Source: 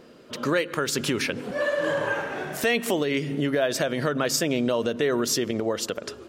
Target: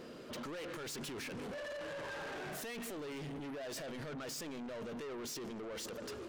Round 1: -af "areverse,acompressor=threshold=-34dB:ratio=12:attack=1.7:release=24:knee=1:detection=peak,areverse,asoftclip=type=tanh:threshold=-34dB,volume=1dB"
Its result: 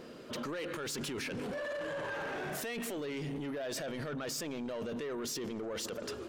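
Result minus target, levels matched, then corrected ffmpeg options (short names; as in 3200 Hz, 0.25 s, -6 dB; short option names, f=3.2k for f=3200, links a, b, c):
soft clip: distortion -8 dB
-af "areverse,acompressor=threshold=-34dB:ratio=12:attack=1.7:release=24:knee=1:detection=peak,areverse,asoftclip=type=tanh:threshold=-42.5dB,volume=1dB"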